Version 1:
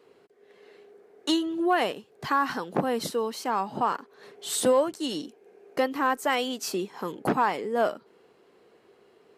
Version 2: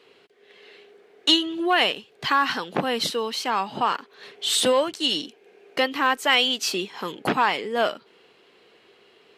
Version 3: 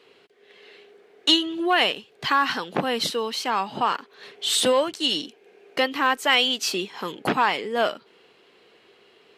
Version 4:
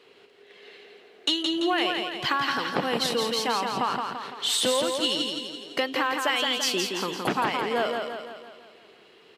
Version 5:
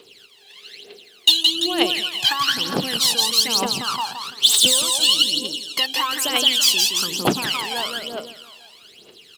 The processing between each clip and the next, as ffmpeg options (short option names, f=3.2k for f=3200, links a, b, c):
-af "equalizer=f=3.1k:t=o:w=1.7:g=14"
-af anull
-filter_complex "[0:a]acompressor=threshold=-22dB:ratio=6,asplit=2[a][b];[b]aecho=0:1:169|338|507|676|845|1014|1183:0.596|0.316|0.167|0.0887|0.047|0.0249|0.0132[c];[a][c]amix=inputs=2:normalize=0"
-filter_complex "[0:a]aphaser=in_gain=1:out_gain=1:delay=1.3:decay=0.78:speed=1.1:type=triangular,acrossover=split=4000[a][b];[b]asoftclip=type=tanh:threshold=-27.5dB[c];[a][c]amix=inputs=2:normalize=0,aexciter=amount=4.7:drive=5.2:freq=2.8k,volume=-3dB"